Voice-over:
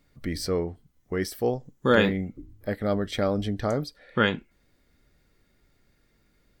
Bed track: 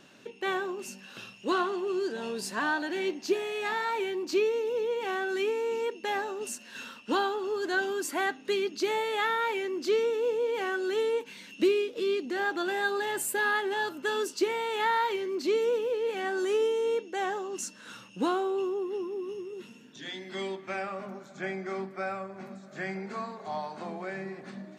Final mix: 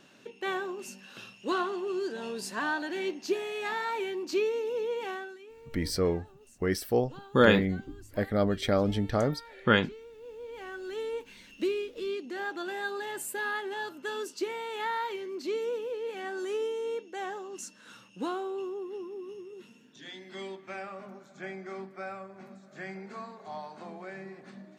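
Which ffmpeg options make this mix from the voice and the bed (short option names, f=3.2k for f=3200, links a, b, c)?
-filter_complex "[0:a]adelay=5500,volume=-0.5dB[a];[1:a]volume=14dB,afade=t=out:st=5:d=0.38:silence=0.105925,afade=t=in:st=10.16:d=1.11:silence=0.158489[b];[a][b]amix=inputs=2:normalize=0"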